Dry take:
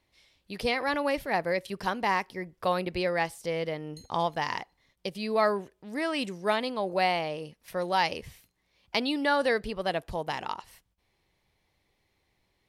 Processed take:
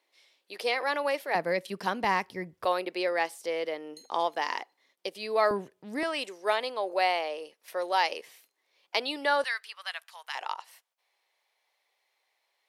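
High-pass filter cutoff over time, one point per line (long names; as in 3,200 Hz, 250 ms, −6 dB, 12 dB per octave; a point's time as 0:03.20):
high-pass filter 24 dB per octave
370 Hz
from 0:01.35 170 Hz
from 0:02.04 76 Hz
from 0:02.65 310 Hz
from 0:05.51 110 Hz
from 0:06.03 380 Hz
from 0:09.44 1,200 Hz
from 0:10.35 570 Hz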